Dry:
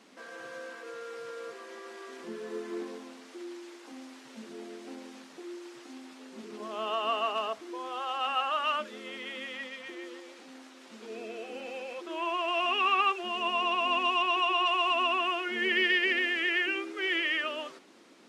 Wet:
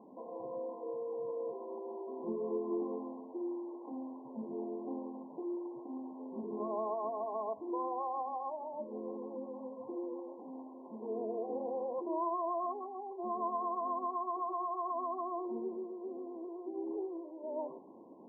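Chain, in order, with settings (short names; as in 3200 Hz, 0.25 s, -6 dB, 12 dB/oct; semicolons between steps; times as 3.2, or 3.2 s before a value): compressor 6:1, threshold -35 dBFS, peak gain reduction 12.5 dB; brick-wall FIR low-pass 1100 Hz; gain +4 dB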